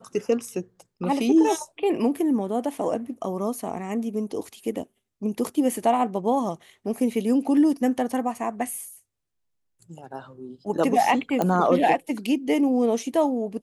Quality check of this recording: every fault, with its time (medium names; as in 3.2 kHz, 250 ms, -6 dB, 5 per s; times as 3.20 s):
11.42 s: pop -11 dBFS